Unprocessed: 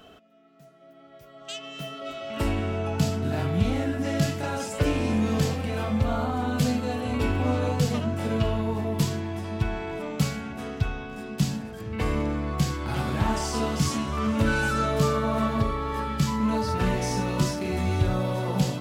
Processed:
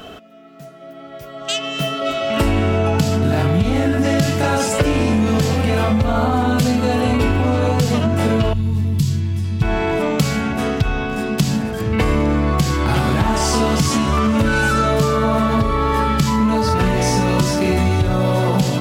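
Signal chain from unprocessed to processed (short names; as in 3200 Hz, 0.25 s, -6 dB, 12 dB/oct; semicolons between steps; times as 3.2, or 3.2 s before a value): in parallel at +2.5 dB: limiter -19.5 dBFS, peak gain reduction 7.5 dB; 8.53–9.62 on the sum: EQ curve 140 Hz 0 dB, 610 Hz -26 dB, 4300 Hz -7 dB; compressor, threshold -20 dBFS, peak gain reduction 8 dB; gain +7.5 dB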